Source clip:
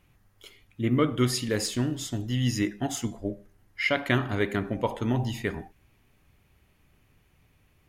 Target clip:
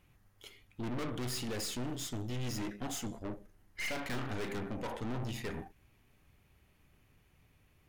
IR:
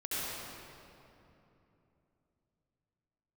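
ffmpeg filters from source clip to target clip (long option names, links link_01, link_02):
-filter_complex "[0:a]aeval=exprs='(tanh(63.1*val(0)+0.65)-tanh(0.65))/63.1':channel_layout=same,asettb=1/sr,asplit=3[link_01][link_02][link_03];[link_01]atrim=end=3.274[link_04];[link_02]atrim=start=3.27:end=4.53,asetpts=PTS-STARTPTS,afade=type=in:duration=0.004:curve=qsin,afade=type=out:start_time=1.256:duration=0.004:curve=qsin,asplit=2[link_05][link_06];[link_06]adelay=36,volume=-10dB[link_07];[link_05][link_07]amix=inputs=2:normalize=0,atrim=end_sample=55566[link_08];[link_03]atrim=start=4.526[link_09];[link_04][link_08]acrossfade=duration=0.004:curve1=hsin:curve2=qsin[link_10];[link_10][link_09]acrossfade=duration=0.004:curve1=qsin:curve2=hsin"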